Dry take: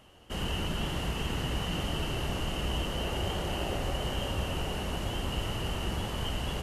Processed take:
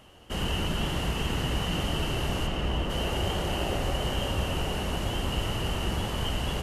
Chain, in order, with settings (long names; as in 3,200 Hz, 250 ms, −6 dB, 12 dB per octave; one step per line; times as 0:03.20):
0:02.46–0:02.89: high-shelf EQ 7,000 Hz → 3,700 Hz −12 dB
level +3.5 dB